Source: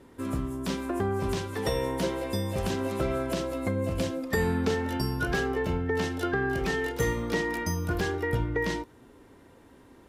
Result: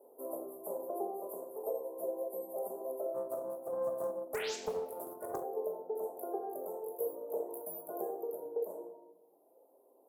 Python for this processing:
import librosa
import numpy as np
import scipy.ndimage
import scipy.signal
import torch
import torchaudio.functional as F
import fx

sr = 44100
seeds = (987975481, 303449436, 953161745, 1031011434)

y = scipy.signal.sosfilt(scipy.signal.cheby2(4, 70, [1900.0, 5100.0], 'bandstop', fs=sr, output='sos'), x)
y = fx.dereverb_blind(y, sr, rt60_s=1.4)
y = scipy.signal.sosfilt(scipy.signal.butter(4, 590.0, 'highpass', fs=sr, output='sos'), y)
y = fx.rider(y, sr, range_db=4, speed_s=0.5)
y = fx.spec_paint(y, sr, seeds[0], shape='rise', start_s=4.34, length_s=0.22, low_hz=1300.0, high_hz=7800.0, level_db=-47.0)
y = fx.room_shoebox(y, sr, seeds[1], volume_m3=430.0, walls='mixed', distance_m=1.4)
y = fx.doppler_dist(y, sr, depth_ms=0.35, at=(3.14, 5.44))
y = y * librosa.db_to_amplitude(2.5)